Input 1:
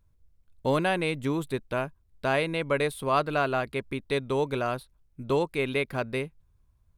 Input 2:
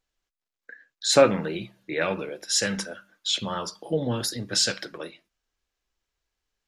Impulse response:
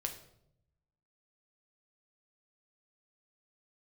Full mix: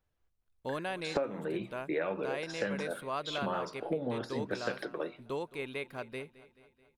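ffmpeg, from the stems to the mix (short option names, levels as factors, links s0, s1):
-filter_complex "[0:a]lowshelf=f=160:g=-8,volume=0.316,asplit=2[s0][s1];[s1]volume=0.119[s2];[1:a]deesser=0.65,bandpass=f=540:t=q:w=0.52:csg=0,volume=1.26[s3];[s2]aecho=0:1:216|432|648|864|1080|1296|1512|1728|1944:1|0.59|0.348|0.205|0.121|0.0715|0.0422|0.0249|0.0147[s4];[s0][s3][s4]amix=inputs=3:normalize=0,acompressor=threshold=0.0355:ratio=16"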